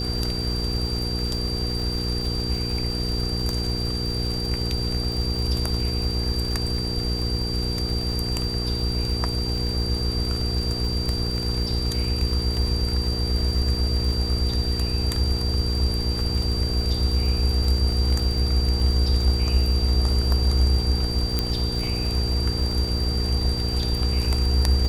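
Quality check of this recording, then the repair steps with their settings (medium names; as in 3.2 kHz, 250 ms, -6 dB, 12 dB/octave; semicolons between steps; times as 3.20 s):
crackle 49 per s -29 dBFS
hum 60 Hz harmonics 8 -28 dBFS
whine 4.7 kHz -29 dBFS
21.39 s: pop -8 dBFS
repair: de-click; band-stop 4.7 kHz, Q 30; de-hum 60 Hz, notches 8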